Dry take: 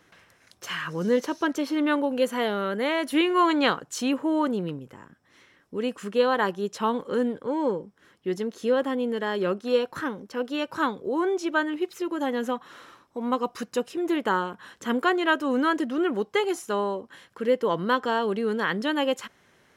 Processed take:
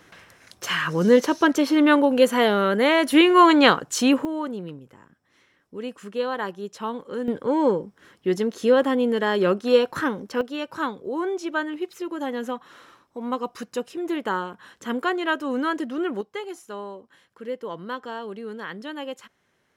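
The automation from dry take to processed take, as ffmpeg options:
-af "asetnsamples=n=441:p=0,asendcmd='4.25 volume volume -4.5dB;7.28 volume volume 5.5dB;10.41 volume volume -1.5dB;16.21 volume volume -8.5dB',volume=7dB"

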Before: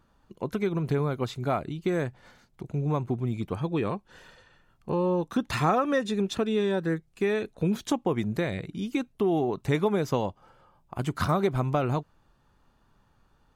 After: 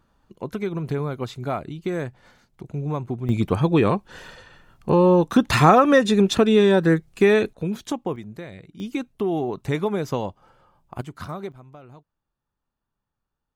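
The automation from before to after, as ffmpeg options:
-af "asetnsamples=n=441:p=0,asendcmd='3.29 volume volume 10dB;7.53 volume volume -0.5dB;8.16 volume volume -8.5dB;8.8 volume volume 1dB;11.01 volume volume -8dB;11.52 volume volume -19dB',volume=0.5dB"

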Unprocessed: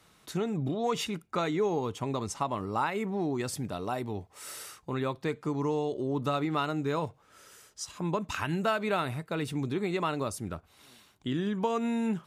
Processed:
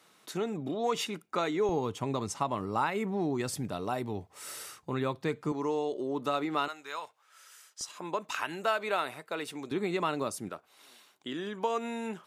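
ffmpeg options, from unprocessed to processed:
-af "asetnsamples=n=441:p=0,asendcmd='1.69 highpass f 89;5.52 highpass f 280;6.68 highpass f 1100;7.81 highpass f 430;9.71 highpass f 180;10.49 highpass f 370',highpass=240"

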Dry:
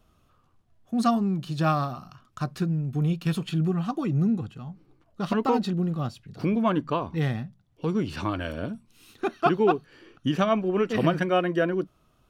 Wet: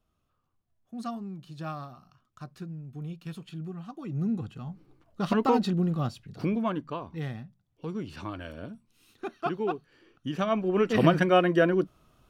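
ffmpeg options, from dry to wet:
-af "volume=10.5dB,afade=t=in:st=3.99:d=0.67:silence=0.223872,afade=t=out:st=6.19:d=0.64:silence=0.375837,afade=t=in:st=10.27:d=0.76:silence=0.298538"

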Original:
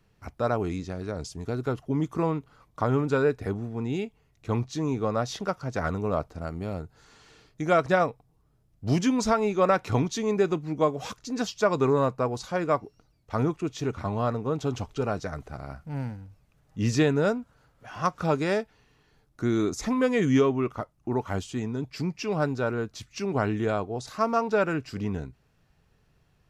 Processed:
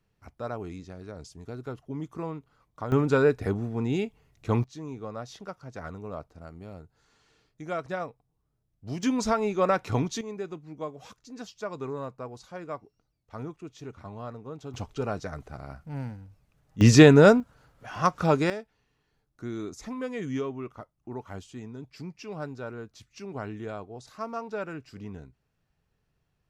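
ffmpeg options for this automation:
-af "asetnsamples=n=441:p=0,asendcmd='2.92 volume volume 2dB;4.64 volume volume -10.5dB;9.03 volume volume -2dB;10.21 volume volume -12dB;14.74 volume volume -2.5dB;16.81 volume volume 9dB;17.4 volume volume 2.5dB;18.5 volume volume -10dB',volume=-8.5dB"

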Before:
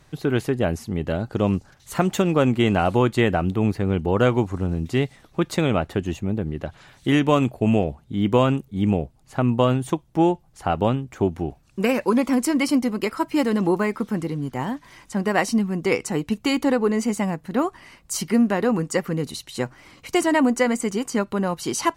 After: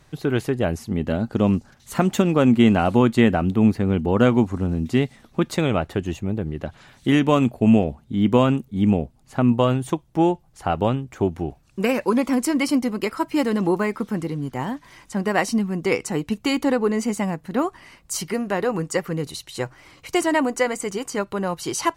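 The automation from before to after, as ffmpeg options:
-af "asetnsamples=n=441:p=0,asendcmd='0.9 equalizer g 9;5.52 equalizer g -1.5;6.63 equalizer g 6.5;9.52 equalizer g -1;18.21 equalizer g -10.5',equalizer=f=230:t=o:w=0.32:g=-0.5"

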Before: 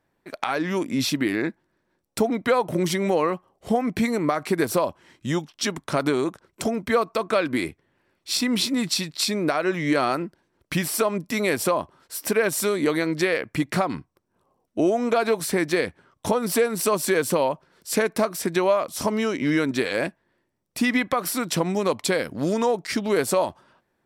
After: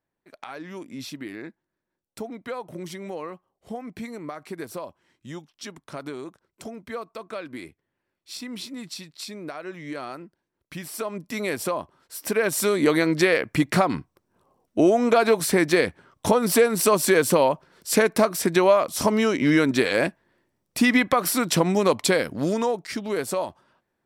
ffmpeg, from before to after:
-af "volume=3dB,afade=t=in:st=10.74:d=0.66:silence=0.398107,afade=t=in:st=12.15:d=0.77:silence=0.421697,afade=t=out:st=22.01:d=0.89:silence=0.398107"

